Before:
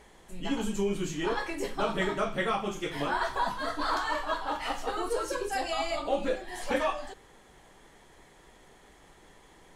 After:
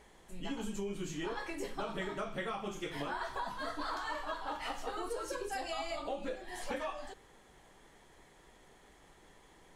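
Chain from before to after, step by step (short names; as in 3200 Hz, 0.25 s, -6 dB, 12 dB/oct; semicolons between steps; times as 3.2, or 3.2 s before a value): compressor, threshold -30 dBFS, peak gain reduction 8 dB; gain -4.5 dB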